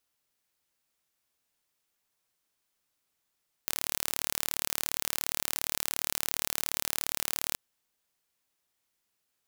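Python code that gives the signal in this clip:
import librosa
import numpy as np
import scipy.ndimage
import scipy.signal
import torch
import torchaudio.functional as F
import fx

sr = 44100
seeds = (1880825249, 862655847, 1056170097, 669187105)

y = 10.0 ** (-3.0 / 20.0) * (np.mod(np.arange(round(3.88 * sr)), round(sr / 37.2)) == 0)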